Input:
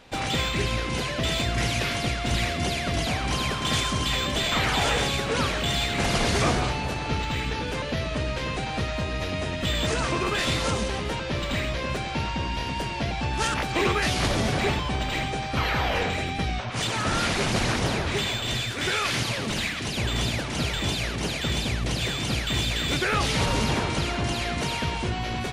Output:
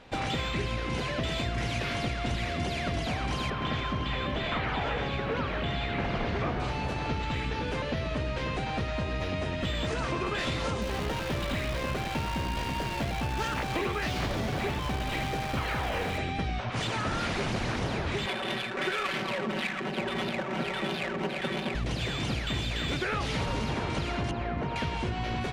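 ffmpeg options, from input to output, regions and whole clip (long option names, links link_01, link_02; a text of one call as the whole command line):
ffmpeg -i in.wav -filter_complex "[0:a]asettb=1/sr,asplit=3[link_01][link_02][link_03];[link_01]atrim=end=3.504[link_04];[link_02]atrim=start=3.5:end=6.6,asetpts=PTS-STARTPTS,afade=type=in:duration=0.004:curve=qsin,afade=type=out:start_time=3.096:duration=0.004:curve=qsin,lowpass=3000,acrusher=bits=8:mix=0:aa=0.5[link_05];[link_03]atrim=start=6.596[link_06];[link_04][link_05]acrossfade=duration=0.004:curve1=hsin:curve2=qsin[link_07];[link_07][link_06]acrossfade=duration=0.004:curve1=qsin:curve2=hsin,asettb=1/sr,asplit=3[link_08][link_09][link_10];[link_08]atrim=end=10.814[link_11];[link_09]atrim=start=10.81:end=16.18,asetpts=PTS-STARTPTS,afade=type=in:duration=0.004:curve=qsin,afade=type=out:start_time=5.366:duration=0.004:curve=qsin,lowpass=8000,acrusher=bits=6:dc=4:mix=0:aa=0.000001[link_12];[link_10]atrim=start=16.176[link_13];[link_11][link_12]acrossfade=duration=0.004:curve1=hsin:curve2=qsin[link_14];[link_14][link_13]acrossfade=duration=0.004:curve1=qsin:curve2=hsin,asettb=1/sr,asplit=3[link_15][link_16][link_17];[link_15]atrim=end=18.264[link_18];[link_16]atrim=start=18.26:end=21.75,asetpts=PTS-STARTPTS,afade=type=in:duration=0.004:curve=qsin,afade=type=out:start_time=3.486:duration=0.004:curve=qsin,highpass=230,aecho=1:1:5.3:0.99,atrim=end_sample=153909,adynamicsmooth=sensitivity=2.5:basefreq=650[link_19];[link_17]atrim=start=21.746[link_20];[link_18][link_19]acrossfade=duration=0.004:curve1=hsin:curve2=qsin[link_21];[link_21][link_20]acrossfade=duration=0.004:curve1=qsin:curve2=hsin,asettb=1/sr,asplit=3[link_22][link_23][link_24];[link_22]atrim=end=24.314[link_25];[link_23]atrim=start=24.31:end=24.76,asetpts=PTS-STARTPTS,afade=type=in:duration=0.004:curve=qsin,afade=type=out:start_time=0.446:duration=0.004:curve=qsin,lowpass=1400,aemphasis=mode=production:type=50fm[link_26];[link_24]atrim=start=24.756[link_27];[link_25][link_26]acrossfade=duration=0.004:curve1=hsin:curve2=qsin[link_28];[link_28][link_27]acrossfade=duration=0.004:curve1=qsin:curve2=hsin,lowpass=frequency=3000:poles=1,acompressor=threshold=-27dB:ratio=6" out.wav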